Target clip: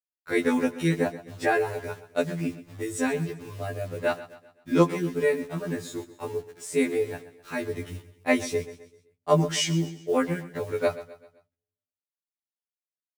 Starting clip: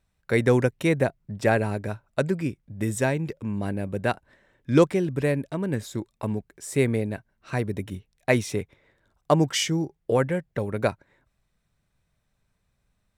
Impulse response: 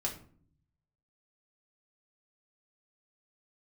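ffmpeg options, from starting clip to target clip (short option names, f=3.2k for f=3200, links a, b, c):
-filter_complex "[0:a]lowpass=f=12k:w=0.5412,lowpass=f=12k:w=1.3066,equalizer=f=180:w=8:g=-9.5,aecho=1:1:6.8:0.46,acrusher=bits=7:mix=0:aa=0.000001,aecho=1:1:129|258|387|516:0.158|0.0713|0.0321|0.0144,asplit=2[a][b];[1:a]atrim=start_sample=2205[c];[b][c]afir=irnorm=-1:irlink=0,volume=-23.5dB[d];[a][d]amix=inputs=2:normalize=0,afftfilt=real='re*2*eq(mod(b,4),0)':imag='im*2*eq(mod(b,4),0)':win_size=2048:overlap=0.75"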